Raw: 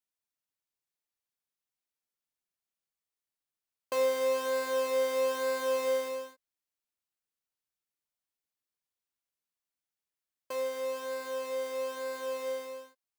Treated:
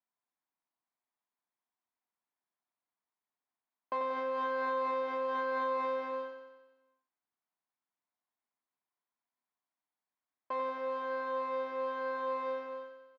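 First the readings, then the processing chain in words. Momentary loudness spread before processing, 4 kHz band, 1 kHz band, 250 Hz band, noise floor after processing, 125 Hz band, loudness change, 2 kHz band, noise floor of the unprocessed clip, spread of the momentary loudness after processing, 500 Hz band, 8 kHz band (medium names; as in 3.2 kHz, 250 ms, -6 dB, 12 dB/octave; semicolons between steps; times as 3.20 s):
10 LU, -11.0 dB, +5.0 dB, +0.5 dB, under -85 dBFS, no reading, -3.0 dB, -1.0 dB, under -85 dBFS, 7 LU, -5.5 dB, under -25 dB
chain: peak limiter -26.5 dBFS, peak gain reduction 6.5 dB; cabinet simulation 190–3100 Hz, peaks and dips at 240 Hz +5 dB, 500 Hz -6 dB, 710 Hz +6 dB, 1 kHz +8 dB, 2.8 kHz -10 dB; on a send: feedback delay 91 ms, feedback 59%, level -7 dB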